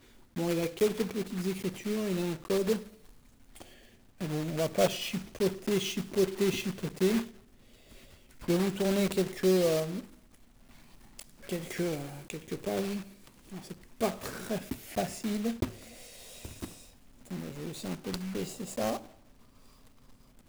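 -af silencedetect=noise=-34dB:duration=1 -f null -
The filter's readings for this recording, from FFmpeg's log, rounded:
silence_start: 7.22
silence_end: 8.48 | silence_duration: 1.26
silence_start: 9.99
silence_end: 11.19 | silence_duration: 1.20
silence_start: 18.97
silence_end: 20.49 | silence_duration: 1.52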